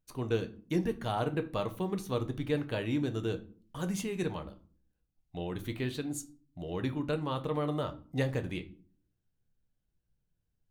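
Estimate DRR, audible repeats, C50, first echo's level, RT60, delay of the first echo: 7.5 dB, no echo, 16.0 dB, no echo, 0.45 s, no echo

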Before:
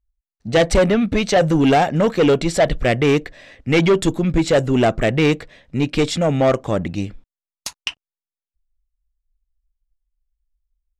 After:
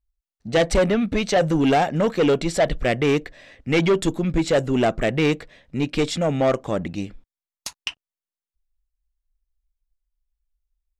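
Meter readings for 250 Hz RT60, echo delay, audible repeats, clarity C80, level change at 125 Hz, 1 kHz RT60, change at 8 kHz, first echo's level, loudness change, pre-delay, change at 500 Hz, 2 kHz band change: no reverb, no echo, no echo, no reverb, -5.0 dB, no reverb, -3.5 dB, no echo, -3.5 dB, no reverb, -3.5 dB, -3.5 dB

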